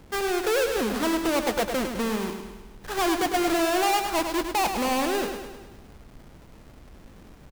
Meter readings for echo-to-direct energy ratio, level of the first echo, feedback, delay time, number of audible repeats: −5.5 dB, −7.0 dB, 56%, 104 ms, 6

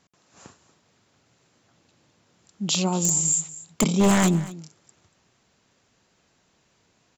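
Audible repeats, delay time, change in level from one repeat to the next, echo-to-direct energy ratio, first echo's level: 1, 235 ms, repeats not evenly spaced, −18.0 dB, −18.0 dB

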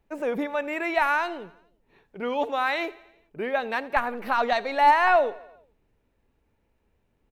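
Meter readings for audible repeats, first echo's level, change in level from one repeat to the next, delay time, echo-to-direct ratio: 3, −21.0 dB, −4.5 dB, 85 ms, −19.0 dB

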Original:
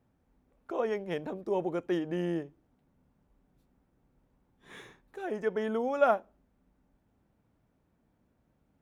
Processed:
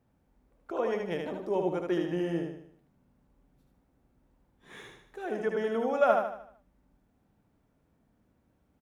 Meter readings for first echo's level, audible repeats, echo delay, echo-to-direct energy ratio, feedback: −4.0 dB, 5, 76 ms, −3.0 dB, 44%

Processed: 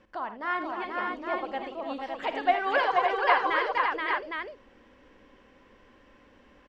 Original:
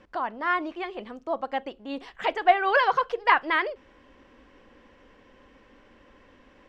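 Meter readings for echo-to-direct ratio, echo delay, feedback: 0.5 dB, 53 ms, repeats not evenly spaced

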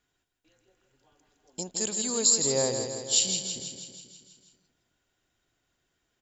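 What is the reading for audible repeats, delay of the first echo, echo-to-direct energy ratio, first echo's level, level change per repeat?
7, 162 ms, −5.0 dB, −7.0 dB, −4.5 dB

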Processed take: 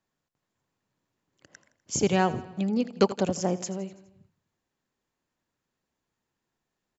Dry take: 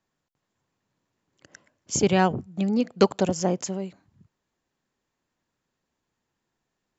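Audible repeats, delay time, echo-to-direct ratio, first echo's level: 4, 83 ms, −15.0 dB, −16.5 dB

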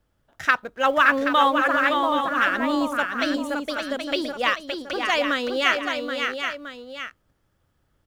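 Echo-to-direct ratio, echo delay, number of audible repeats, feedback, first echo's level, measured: −3.0 dB, 568 ms, 3, repeats not evenly spaced, −5.5 dB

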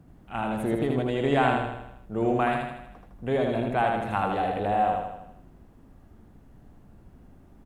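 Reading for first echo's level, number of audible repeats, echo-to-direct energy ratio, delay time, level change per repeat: −3.0 dB, 6, −1.5 dB, 79 ms, −5.5 dB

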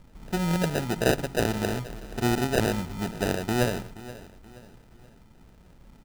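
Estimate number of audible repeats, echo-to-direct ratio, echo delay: 3, −16.5 dB, 477 ms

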